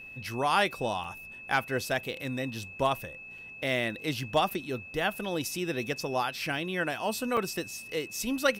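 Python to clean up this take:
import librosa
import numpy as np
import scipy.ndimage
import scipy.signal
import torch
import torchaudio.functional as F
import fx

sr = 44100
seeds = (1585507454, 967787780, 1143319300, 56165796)

y = fx.fix_declip(x, sr, threshold_db=-14.0)
y = fx.notch(y, sr, hz=2600.0, q=30.0)
y = fx.fix_interpolate(y, sr, at_s=(1.04, 3.38, 4.5, 7.37), length_ms=3.9)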